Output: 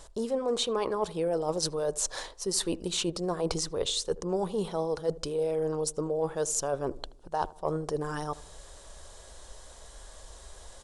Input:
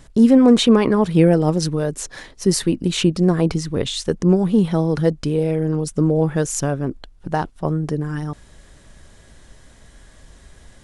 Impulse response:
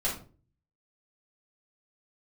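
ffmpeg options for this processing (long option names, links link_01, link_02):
-filter_complex "[0:a]equalizer=frequency=125:width_type=o:width=1:gain=-11,equalizer=frequency=250:width_type=o:width=1:gain=-11,equalizer=frequency=500:width_type=o:width=1:gain=6,equalizer=frequency=1000:width_type=o:width=1:gain=6,equalizer=frequency=2000:width_type=o:width=1:gain=-7,equalizer=frequency=4000:width_type=o:width=1:gain=4,equalizer=frequency=8000:width_type=o:width=1:gain=6,areverse,acompressor=threshold=-25dB:ratio=6,areverse,asplit=2[link_01][link_02];[link_02]adelay=78,lowpass=frequency=890:poles=1,volume=-17.5dB,asplit=2[link_03][link_04];[link_04]adelay=78,lowpass=frequency=890:poles=1,volume=0.55,asplit=2[link_05][link_06];[link_06]adelay=78,lowpass=frequency=890:poles=1,volume=0.55,asplit=2[link_07][link_08];[link_08]adelay=78,lowpass=frequency=890:poles=1,volume=0.55,asplit=2[link_09][link_10];[link_10]adelay=78,lowpass=frequency=890:poles=1,volume=0.55[link_11];[link_01][link_03][link_05][link_07][link_09][link_11]amix=inputs=6:normalize=0,volume=-2dB"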